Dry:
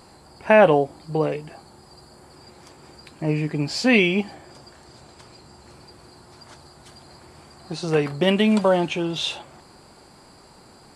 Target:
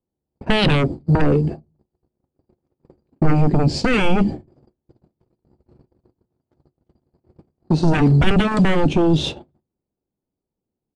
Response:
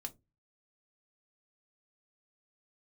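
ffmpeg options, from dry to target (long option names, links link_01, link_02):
-filter_complex "[0:a]acrossover=split=530[link_01][link_02];[link_01]aeval=exprs='0.316*sin(PI/2*6.31*val(0)/0.316)':channel_layout=same[link_03];[link_03][link_02]amix=inputs=2:normalize=0,acrossover=split=380|3000[link_04][link_05][link_06];[link_05]acompressor=threshold=-31dB:ratio=3[link_07];[link_04][link_07][link_06]amix=inputs=3:normalize=0,agate=range=-52dB:threshold=-25dB:ratio=16:detection=peak,adynamicsmooth=sensitivity=6:basefreq=4700,asplit=2[link_08][link_09];[1:a]atrim=start_sample=2205[link_10];[link_09][link_10]afir=irnorm=-1:irlink=0,volume=-8.5dB[link_11];[link_08][link_11]amix=inputs=2:normalize=0,aresample=22050,aresample=44100"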